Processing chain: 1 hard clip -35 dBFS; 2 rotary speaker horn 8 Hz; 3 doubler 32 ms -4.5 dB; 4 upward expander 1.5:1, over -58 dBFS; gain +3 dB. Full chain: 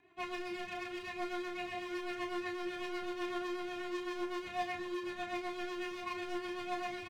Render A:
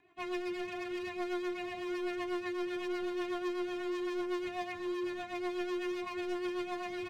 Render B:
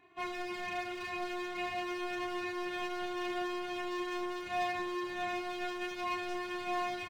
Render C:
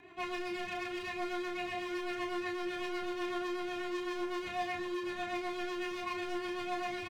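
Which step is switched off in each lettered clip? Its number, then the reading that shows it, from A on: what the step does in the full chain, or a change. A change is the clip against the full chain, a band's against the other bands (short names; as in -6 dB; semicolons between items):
3, loudness change +2.5 LU; 2, 250 Hz band -2.0 dB; 4, loudness change +2.5 LU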